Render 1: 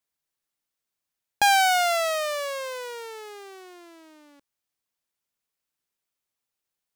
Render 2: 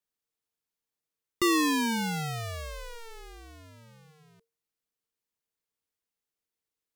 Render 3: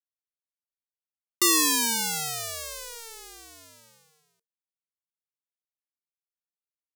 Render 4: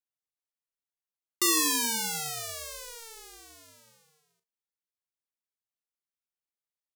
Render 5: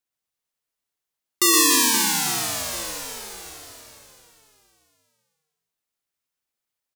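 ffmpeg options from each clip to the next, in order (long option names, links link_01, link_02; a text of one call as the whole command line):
ffmpeg -i in.wav -af "aeval=exprs='if(lt(val(0),0),0.708*val(0),val(0))':channel_layout=same,afreqshift=-460,volume=-4dB" out.wav
ffmpeg -i in.wav -af "bass=frequency=250:gain=-13,treble=frequency=4000:gain=15,agate=range=-33dB:threshold=-49dB:ratio=3:detection=peak" out.wav
ffmpeg -i in.wav -filter_complex "[0:a]asplit=2[link_01][link_02];[link_02]adelay=41,volume=-9.5dB[link_03];[link_01][link_03]amix=inputs=2:normalize=0,volume=-4dB" out.wav
ffmpeg -i in.wav -af "aecho=1:1:120|288|523.2|852.5|1313:0.631|0.398|0.251|0.158|0.1,volume=7dB" out.wav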